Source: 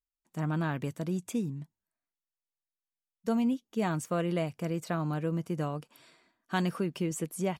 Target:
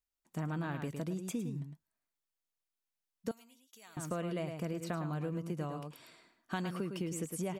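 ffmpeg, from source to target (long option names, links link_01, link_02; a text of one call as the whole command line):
ffmpeg -i in.wav -filter_complex "[0:a]aecho=1:1:107:0.376,acompressor=threshold=-36dB:ratio=4,asettb=1/sr,asplit=3[link_01][link_02][link_03];[link_01]atrim=end=3.314[link_04];[link_02]atrim=start=3.31:end=3.97,asetpts=PTS-STARTPTS,afade=type=in:duration=0.004:curve=qsin,afade=type=out:start_time=0.656:duration=0.004:curve=qsin,aderivative[link_05];[link_03]atrim=start=3.966[link_06];[link_04][link_05]acrossfade=duration=0.004:curve1=hsin:curve2=qsin[link_07];[link_07][link_06]acrossfade=duration=0.004:curve1=qsin:curve2=hsin,volume=1dB" out.wav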